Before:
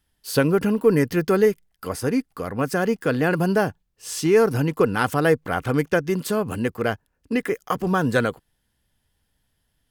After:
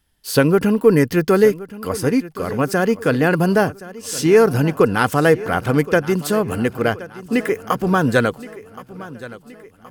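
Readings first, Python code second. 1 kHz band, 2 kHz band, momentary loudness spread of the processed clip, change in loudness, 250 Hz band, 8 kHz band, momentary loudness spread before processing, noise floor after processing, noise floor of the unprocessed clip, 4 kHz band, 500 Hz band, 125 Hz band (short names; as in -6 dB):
+4.5 dB, +4.5 dB, 17 LU, +4.5 dB, +4.5 dB, +4.5 dB, 9 LU, -48 dBFS, -73 dBFS, +4.5 dB, +4.5 dB, +4.5 dB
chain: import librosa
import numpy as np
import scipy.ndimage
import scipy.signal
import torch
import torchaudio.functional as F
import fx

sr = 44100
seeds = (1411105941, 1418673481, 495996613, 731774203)

y = fx.echo_feedback(x, sr, ms=1072, feedback_pct=50, wet_db=-17.5)
y = y * librosa.db_to_amplitude(4.5)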